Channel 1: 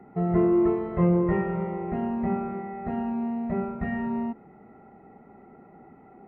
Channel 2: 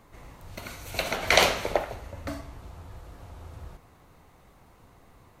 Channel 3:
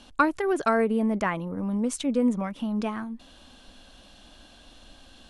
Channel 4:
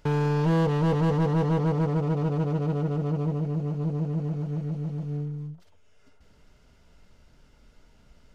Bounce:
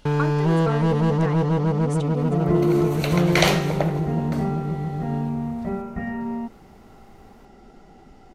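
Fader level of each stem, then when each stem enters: +0.5 dB, 0.0 dB, -7.0 dB, +3.0 dB; 2.15 s, 2.05 s, 0.00 s, 0.00 s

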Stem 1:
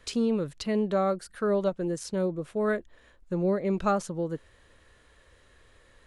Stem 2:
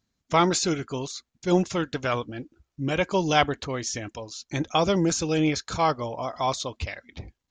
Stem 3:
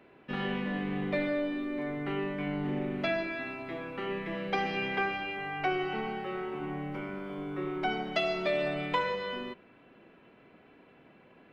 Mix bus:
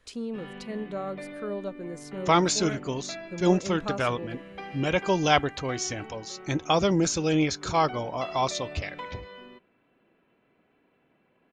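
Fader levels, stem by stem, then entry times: -8.0 dB, -0.5 dB, -9.5 dB; 0.00 s, 1.95 s, 0.05 s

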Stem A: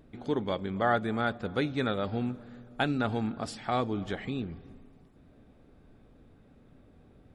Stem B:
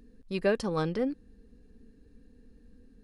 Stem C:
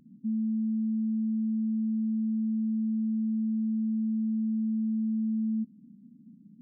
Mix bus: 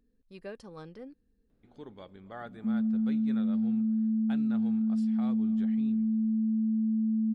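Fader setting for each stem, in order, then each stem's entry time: -16.5 dB, -16.0 dB, +1.0 dB; 1.50 s, 0.00 s, 2.40 s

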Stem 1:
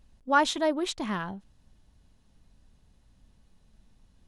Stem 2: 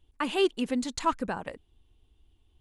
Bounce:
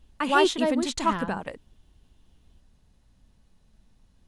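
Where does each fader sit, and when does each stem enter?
0.0 dB, +2.0 dB; 0.00 s, 0.00 s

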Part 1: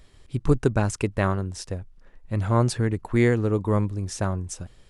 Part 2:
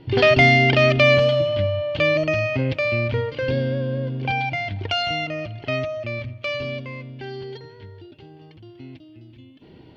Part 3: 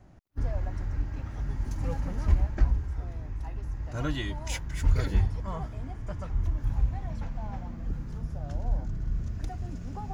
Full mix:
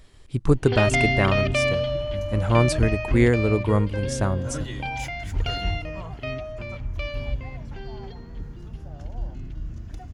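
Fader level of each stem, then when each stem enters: +1.5 dB, -7.5 dB, -3.0 dB; 0.00 s, 0.55 s, 0.50 s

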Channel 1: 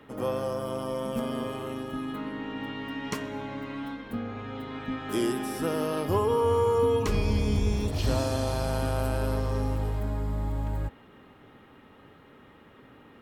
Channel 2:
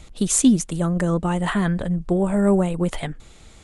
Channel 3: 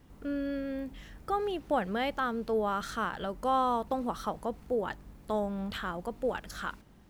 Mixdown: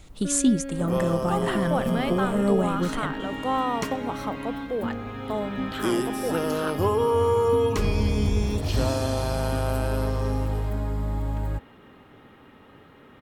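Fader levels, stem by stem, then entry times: +2.5 dB, -5.0 dB, +1.5 dB; 0.70 s, 0.00 s, 0.00 s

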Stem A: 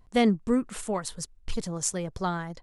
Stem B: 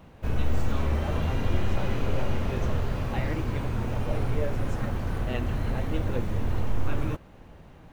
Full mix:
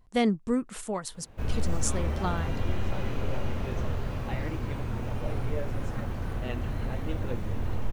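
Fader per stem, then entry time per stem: -2.5 dB, -3.5 dB; 0.00 s, 1.15 s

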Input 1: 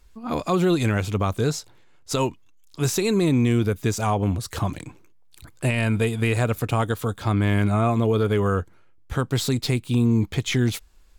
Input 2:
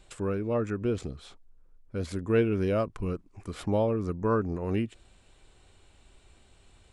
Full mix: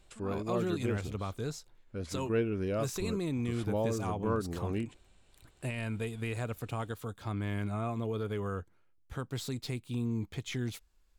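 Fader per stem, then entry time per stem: -14.0 dB, -6.0 dB; 0.00 s, 0.00 s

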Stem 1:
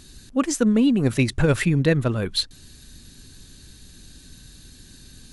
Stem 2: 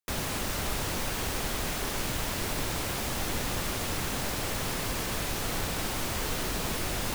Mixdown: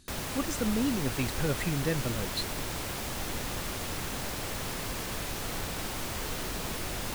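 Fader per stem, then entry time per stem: -11.5 dB, -3.5 dB; 0.00 s, 0.00 s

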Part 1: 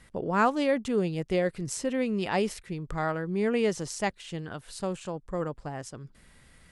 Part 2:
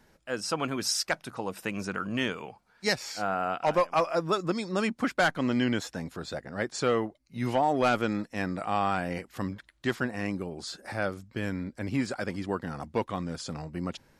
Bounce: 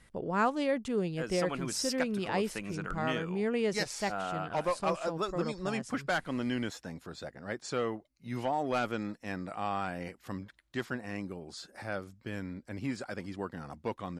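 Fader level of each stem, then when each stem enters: -4.5 dB, -6.5 dB; 0.00 s, 0.90 s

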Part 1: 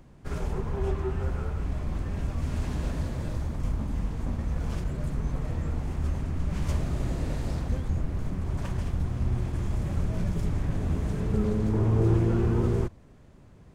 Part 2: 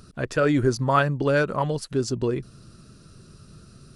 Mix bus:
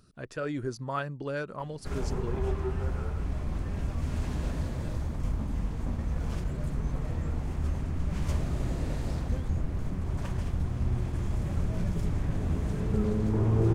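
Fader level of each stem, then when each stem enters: -1.5 dB, -12.5 dB; 1.60 s, 0.00 s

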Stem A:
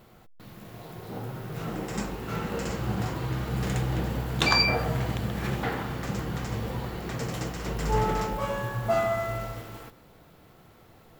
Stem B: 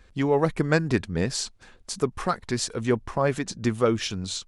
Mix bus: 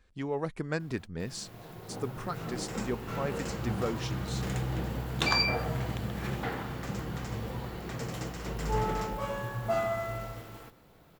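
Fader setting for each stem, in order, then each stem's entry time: -4.5 dB, -11.0 dB; 0.80 s, 0.00 s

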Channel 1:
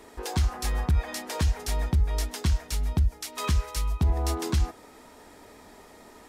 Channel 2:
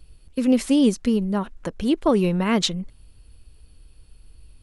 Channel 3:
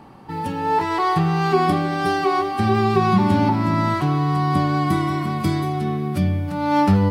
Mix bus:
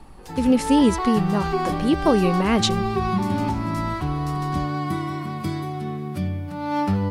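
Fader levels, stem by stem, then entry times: -10.5 dB, +0.5 dB, -6.0 dB; 0.00 s, 0.00 s, 0.00 s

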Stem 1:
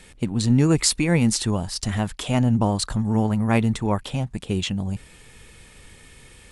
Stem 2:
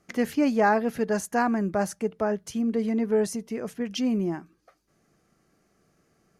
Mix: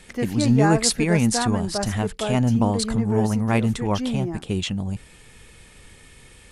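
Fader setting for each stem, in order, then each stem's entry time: -0.5 dB, -1.5 dB; 0.00 s, 0.00 s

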